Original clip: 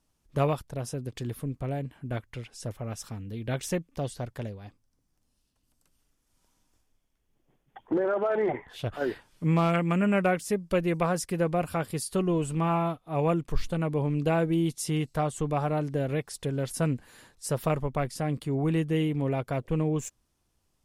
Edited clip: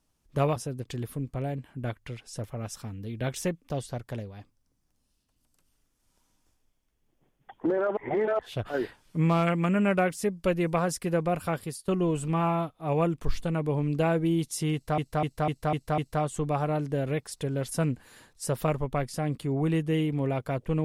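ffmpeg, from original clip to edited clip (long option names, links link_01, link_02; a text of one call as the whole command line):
ffmpeg -i in.wav -filter_complex "[0:a]asplit=10[link_01][link_02][link_03][link_04][link_05][link_06][link_07][link_08][link_09][link_10];[link_01]atrim=end=0.562[link_11];[link_02]atrim=start=0.828:end=8.242[link_12];[link_03]atrim=start=8.238:end=8.662,asetpts=PTS-STARTPTS,areverse[link_13];[link_04]atrim=start=8.658:end=12.15,asetpts=PTS-STARTPTS,afade=type=out:start_time=3.172:duration=0.32:silence=0.158489[link_14];[link_05]atrim=start=12.15:end=15.252,asetpts=PTS-STARTPTS,afade=type=in:duration=0.004:curve=hsin:silence=0.158489[link_15];[link_06]atrim=start=14.998:end=15.252[link_16];[link_07]atrim=start=14.998:end=15.252[link_17];[link_08]atrim=start=14.998:end=15.252[link_18];[link_09]atrim=start=14.998:end=15.252[link_19];[link_10]atrim=start=14.998[link_20];[link_11][link_12]acrossfade=duration=0.004:curve1=hsin:curve2=hsin[link_21];[link_21][link_13]acrossfade=duration=0.004:curve1=hsin:curve2=hsin[link_22];[link_14][link_15]concat=n=2:v=0:a=1[link_23];[link_22][link_23]acrossfade=duration=0.004:curve1=hsin:curve2=hsin[link_24];[link_24][link_16]acrossfade=duration=0.004:curve1=hsin:curve2=hsin[link_25];[link_25][link_17]acrossfade=duration=0.004:curve1=hsin:curve2=hsin[link_26];[link_26][link_18]acrossfade=duration=0.004:curve1=hsin:curve2=hsin[link_27];[link_27][link_19]acrossfade=duration=0.004:curve1=hsin:curve2=hsin[link_28];[link_28][link_20]acrossfade=duration=0.004:curve1=hsin:curve2=hsin" out.wav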